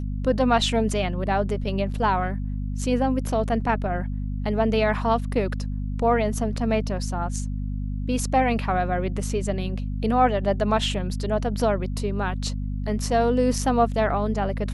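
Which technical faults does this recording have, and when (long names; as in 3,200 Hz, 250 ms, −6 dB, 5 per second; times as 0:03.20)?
mains hum 50 Hz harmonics 5 −28 dBFS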